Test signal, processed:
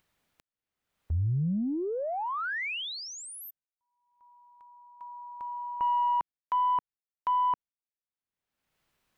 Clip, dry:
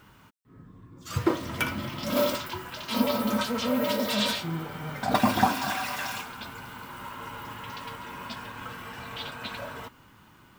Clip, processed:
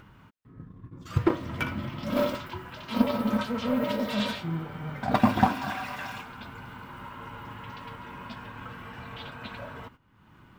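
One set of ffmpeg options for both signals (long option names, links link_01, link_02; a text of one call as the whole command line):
ffmpeg -i in.wav -af "agate=range=-16dB:threshold=-48dB:ratio=16:detection=peak,acompressor=mode=upward:threshold=-36dB:ratio=2.5,bass=frequency=250:gain=5,treble=frequency=4000:gain=-11,aeval=exprs='0.473*(cos(1*acos(clip(val(0)/0.473,-1,1)))-cos(1*PI/2))+0.0188*(cos(2*acos(clip(val(0)/0.473,-1,1)))-cos(2*PI/2))+0.0211*(cos(7*acos(clip(val(0)/0.473,-1,1)))-cos(7*PI/2))':channel_layout=same" out.wav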